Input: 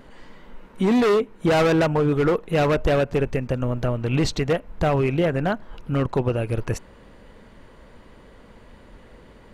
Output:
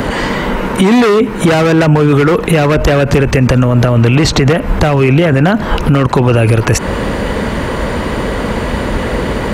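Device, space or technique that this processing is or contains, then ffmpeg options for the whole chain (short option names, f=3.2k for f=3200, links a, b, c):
mastering chain: -filter_complex "[0:a]highpass=43,equalizer=f=3.6k:t=o:w=0.77:g=-1.5,acrossover=split=360|870|1900[a][b][c][d];[a]acompressor=threshold=-27dB:ratio=4[e];[b]acompressor=threshold=-35dB:ratio=4[f];[c]acompressor=threshold=-36dB:ratio=4[g];[d]acompressor=threshold=-39dB:ratio=4[h];[e][f][g][h]amix=inputs=4:normalize=0,acompressor=threshold=-29dB:ratio=2,asoftclip=type=hard:threshold=-22dB,alimiter=level_in=34dB:limit=-1dB:release=50:level=0:latency=1,volume=-1dB"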